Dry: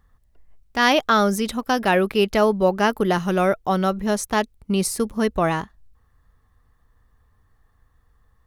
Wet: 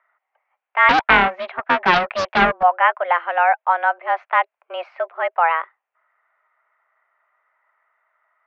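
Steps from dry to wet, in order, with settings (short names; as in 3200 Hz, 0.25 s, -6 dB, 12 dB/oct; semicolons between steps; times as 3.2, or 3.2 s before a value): mistuned SSB +170 Hz 490–2400 Hz; 0.89–2.63 Doppler distortion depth 0.52 ms; gain +5.5 dB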